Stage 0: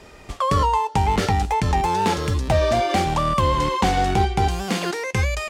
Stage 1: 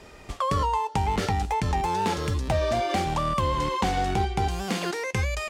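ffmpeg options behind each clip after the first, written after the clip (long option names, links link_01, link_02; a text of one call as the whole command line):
ffmpeg -i in.wav -af "acompressor=threshold=-24dB:ratio=1.5,volume=-2.5dB" out.wav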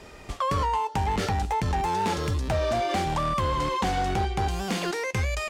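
ffmpeg -i in.wav -af "asoftclip=type=tanh:threshold=-20.5dB,volume=1.5dB" out.wav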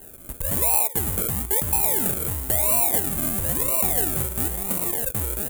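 ffmpeg -i in.wav -af "acrusher=samples=37:mix=1:aa=0.000001:lfo=1:lforange=22.2:lforate=1,aexciter=amount=14.1:drive=4.8:freq=7700,volume=-4dB" out.wav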